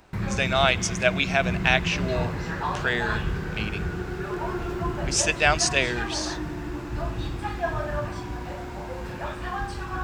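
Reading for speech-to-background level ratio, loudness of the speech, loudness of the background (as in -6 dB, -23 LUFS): 6.0 dB, -24.5 LUFS, -30.5 LUFS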